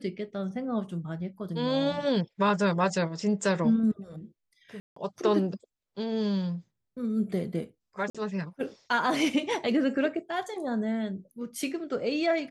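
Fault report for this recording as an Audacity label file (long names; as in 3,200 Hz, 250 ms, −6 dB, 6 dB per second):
4.800000	4.960000	drop-out 164 ms
8.100000	8.150000	drop-out 46 ms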